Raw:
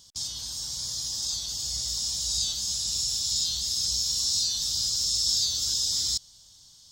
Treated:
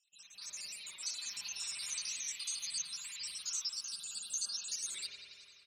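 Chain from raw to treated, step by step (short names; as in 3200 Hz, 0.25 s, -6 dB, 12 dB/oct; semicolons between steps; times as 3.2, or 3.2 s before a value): random spectral dropouts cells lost 74%; comb 6.1 ms, depth 79%; AGC gain up to 15 dB; varispeed +22%; band-pass 2500 Hz, Q 5.6; spring tank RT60 2.2 s, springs 50 ms, chirp 45 ms, DRR -3.5 dB; record warp 45 rpm, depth 100 cents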